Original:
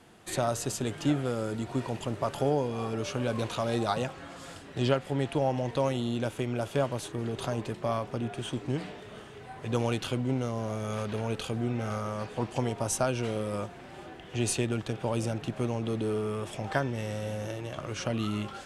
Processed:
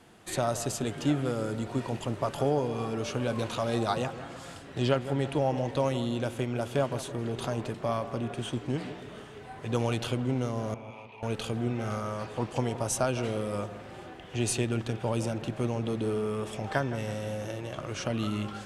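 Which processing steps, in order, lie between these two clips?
10.74–11.23 double band-pass 1500 Hz, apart 1.4 oct; dark delay 0.163 s, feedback 48%, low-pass 1800 Hz, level -12.5 dB

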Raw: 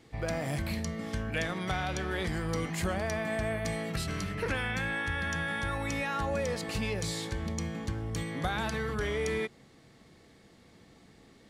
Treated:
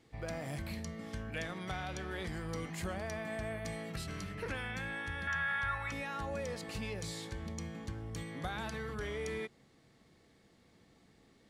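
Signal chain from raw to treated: 5.27–5.92 EQ curve 130 Hz 0 dB, 280 Hz -15 dB, 1400 Hz +10 dB, 6900 Hz -6 dB; gain -7.5 dB

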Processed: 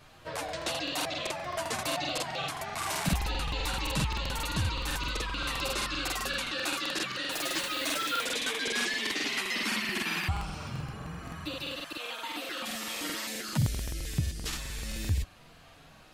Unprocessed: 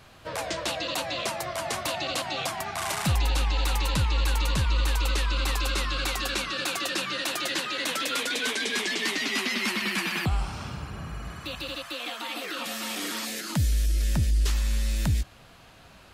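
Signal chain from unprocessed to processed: 7.3–8.23 added noise white -42 dBFS; chorus voices 6, 0.37 Hz, delay 10 ms, depth 3.7 ms; crackling interface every 0.13 s, samples 2048, repeat, from 0.44

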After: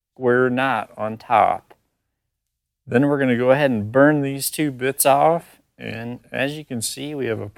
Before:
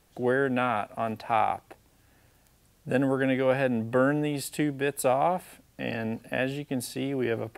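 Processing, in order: wow and flutter 140 cents; short-mantissa float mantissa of 8-bit; three-band expander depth 100%; gain +7 dB

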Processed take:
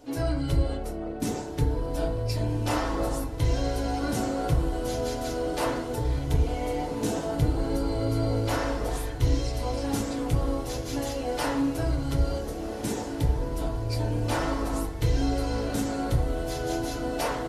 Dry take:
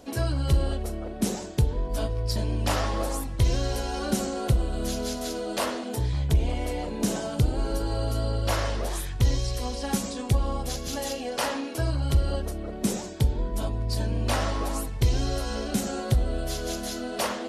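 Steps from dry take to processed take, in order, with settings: diffused feedback echo 1.571 s, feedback 45%, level -11 dB; harmoniser -12 st -10 dB, +3 st -18 dB; FDN reverb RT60 0.53 s, low-frequency decay 0.75×, high-frequency decay 0.3×, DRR -3.5 dB; gain -6.5 dB

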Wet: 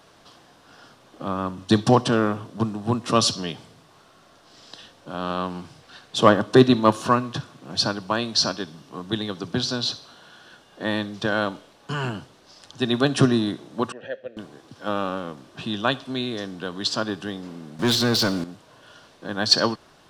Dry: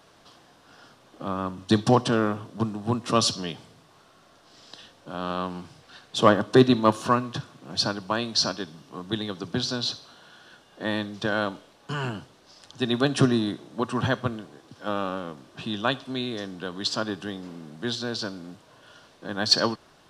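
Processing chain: 13.92–14.37 vowel filter e; 17.79–18.44 sample leveller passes 3; gain +2.5 dB

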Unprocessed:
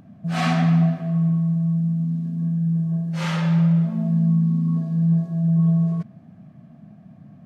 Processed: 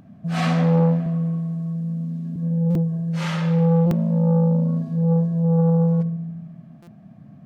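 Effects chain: 1.06–2.36 HPF 200 Hz 24 dB/oct; darkening echo 72 ms, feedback 74%, low-pass 1200 Hz, level -12.5 dB; stuck buffer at 2.7/3.86/6.82, samples 256, times 8; core saturation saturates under 350 Hz

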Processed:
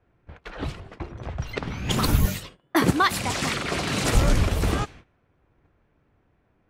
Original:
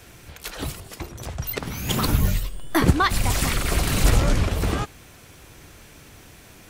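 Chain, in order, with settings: 2.26–4.15 HPF 150 Hz 12 dB/oct; low-pass opened by the level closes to 1200 Hz, open at -18 dBFS; gate -43 dBFS, range -17 dB

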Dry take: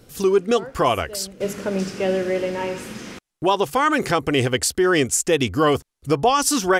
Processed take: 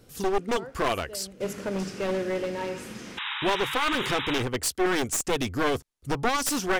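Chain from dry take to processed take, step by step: one-sided fold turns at -18 dBFS; 3.17–4.43 painted sound noise 800–3900 Hz -27 dBFS; 4.38–4.86 three-band expander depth 100%; gain -5.5 dB

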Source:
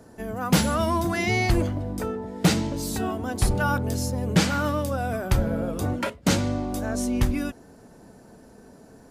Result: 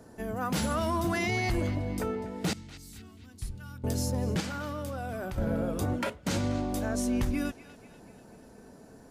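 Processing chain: 2.53–3.84 passive tone stack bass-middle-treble 6-0-2; limiter -18 dBFS, peak gain reduction 11 dB; 4.4–5.38 level quantiser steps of 11 dB; narrowing echo 0.243 s, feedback 57%, band-pass 2800 Hz, level -13.5 dB; gain -2.5 dB

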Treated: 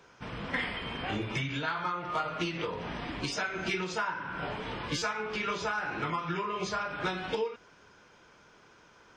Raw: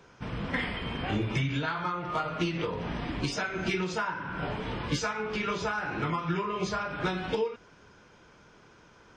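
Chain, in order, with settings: low shelf 330 Hz -7.5 dB; stuck buffer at 4.98, samples 256, times 6

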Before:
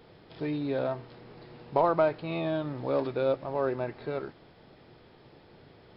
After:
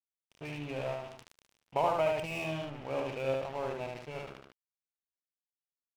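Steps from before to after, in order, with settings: EQ curve 140 Hz 0 dB, 330 Hz -8 dB, 840 Hz 0 dB, 1500 Hz -8 dB, 2900 Hz +13 dB, 4400 Hz -28 dB; crossover distortion -42 dBFS; on a send: feedback echo 75 ms, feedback 17%, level -3.5 dB; on the sum: sustainer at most 65 dB/s; gain -2.5 dB

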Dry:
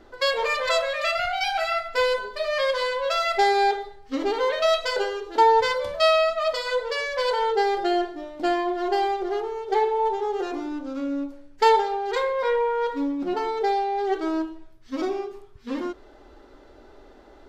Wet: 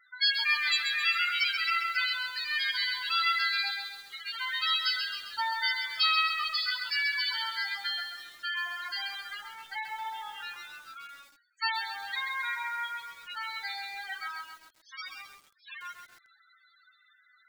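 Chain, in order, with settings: HPF 1400 Hz 24 dB/oct; high shelf 4900 Hz +11.5 dB; in parallel at +0.5 dB: compressor 8:1, threshold -37 dBFS, peak gain reduction 19.5 dB; on the sum: loudest bins only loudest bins 8; lo-fi delay 0.133 s, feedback 55%, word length 8-bit, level -6 dB; gain -2.5 dB

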